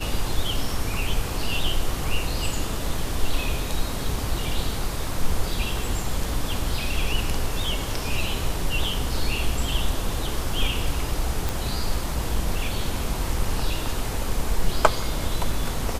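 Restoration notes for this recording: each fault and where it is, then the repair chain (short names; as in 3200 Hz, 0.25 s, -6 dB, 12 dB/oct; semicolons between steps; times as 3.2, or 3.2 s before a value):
11.49 pop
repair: de-click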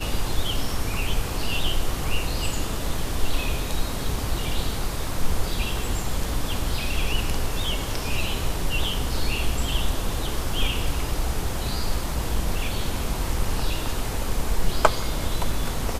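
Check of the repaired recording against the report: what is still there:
none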